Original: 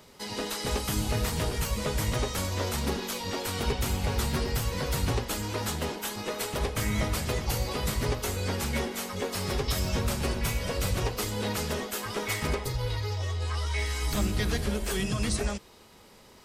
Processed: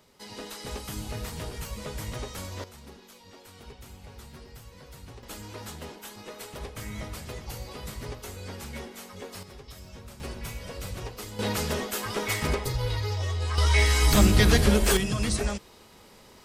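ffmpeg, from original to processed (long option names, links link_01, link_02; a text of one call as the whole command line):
ffmpeg -i in.wav -af "asetnsamples=nb_out_samples=441:pad=0,asendcmd='2.64 volume volume -18dB;5.23 volume volume -9dB;9.43 volume volume -17dB;10.2 volume volume -8dB;11.39 volume volume 2dB;13.58 volume volume 9dB;14.97 volume volume 1.5dB',volume=-7dB" out.wav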